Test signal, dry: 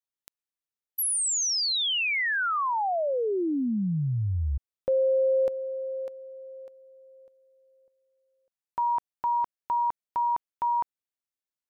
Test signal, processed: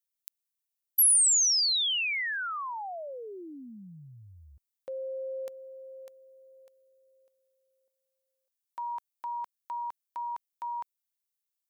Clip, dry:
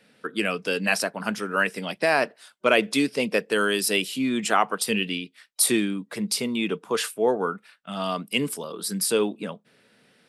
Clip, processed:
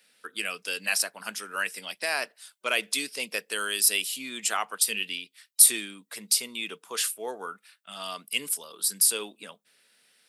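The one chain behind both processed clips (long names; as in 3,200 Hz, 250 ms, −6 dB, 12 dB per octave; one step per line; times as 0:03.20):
spectral tilt +4.5 dB per octave
level −9 dB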